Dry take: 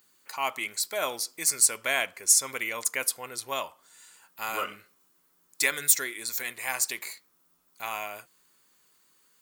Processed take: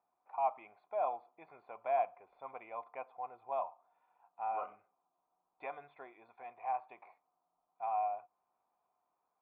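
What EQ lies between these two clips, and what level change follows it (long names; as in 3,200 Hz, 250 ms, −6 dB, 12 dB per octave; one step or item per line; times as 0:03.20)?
formant resonators in series a
notch filter 1,100 Hz, Q 5.7
+8.5 dB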